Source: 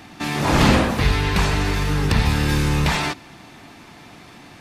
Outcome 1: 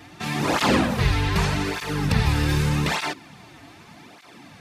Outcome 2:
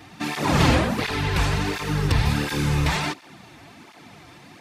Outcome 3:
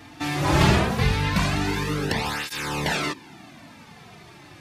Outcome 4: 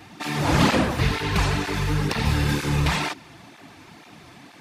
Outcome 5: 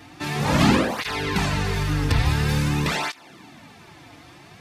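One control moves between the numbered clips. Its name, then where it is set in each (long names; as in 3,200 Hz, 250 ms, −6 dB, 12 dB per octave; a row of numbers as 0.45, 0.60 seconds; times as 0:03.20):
through-zero flanger with one copy inverted, nulls at: 0.83, 1.4, 0.2, 2.1, 0.48 Hertz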